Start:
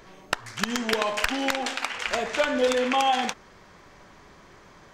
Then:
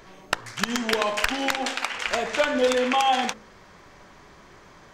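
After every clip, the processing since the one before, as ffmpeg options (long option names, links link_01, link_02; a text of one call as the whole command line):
ffmpeg -i in.wav -af "bandreject=frequency=53.94:width_type=h:width=4,bandreject=frequency=107.88:width_type=h:width=4,bandreject=frequency=161.82:width_type=h:width=4,bandreject=frequency=215.76:width_type=h:width=4,bandreject=frequency=269.7:width_type=h:width=4,bandreject=frequency=323.64:width_type=h:width=4,bandreject=frequency=377.58:width_type=h:width=4,bandreject=frequency=431.52:width_type=h:width=4,bandreject=frequency=485.46:width_type=h:width=4,bandreject=frequency=539.4:width_type=h:width=4,volume=1.5dB" out.wav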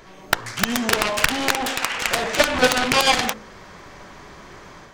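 ffmpeg -i in.wav -af "dynaudnorm=framelen=150:gausssize=3:maxgain=5.5dB,aeval=exprs='0.668*(cos(1*acos(clip(val(0)/0.668,-1,1)))-cos(1*PI/2))+0.237*(cos(7*acos(clip(val(0)/0.668,-1,1)))-cos(7*PI/2))':channel_layout=same,volume=-1dB" out.wav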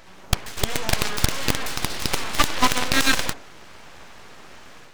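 ffmpeg -i in.wav -af "aeval=exprs='abs(val(0))':channel_layout=same" out.wav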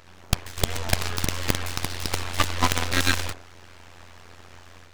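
ffmpeg -i in.wav -af "tremolo=f=88:d=0.857" out.wav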